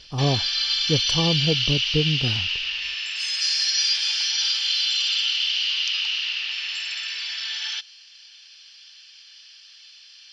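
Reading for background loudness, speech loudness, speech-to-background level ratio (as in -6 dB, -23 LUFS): -22.0 LUFS, -26.0 LUFS, -4.0 dB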